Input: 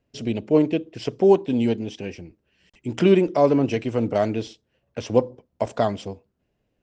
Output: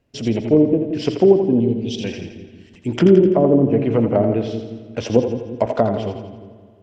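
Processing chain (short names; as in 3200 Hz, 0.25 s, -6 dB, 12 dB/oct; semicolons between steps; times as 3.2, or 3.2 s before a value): treble ducked by the level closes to 420 Hz, closed at -15.5 dBFS; 1.6–2.04 EQ curve 120 Hz 0 dB, 1400 Hz -16 dB, 3700 Hz +10 dB; on a send: split-band echo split 350 Hz, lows 0.177 s, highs 84 ms, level -7 dB; on the sum: spring tank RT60 2 s, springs 44 ms, chirp 40 ms, DRR 14 dB; gain +5.5 dB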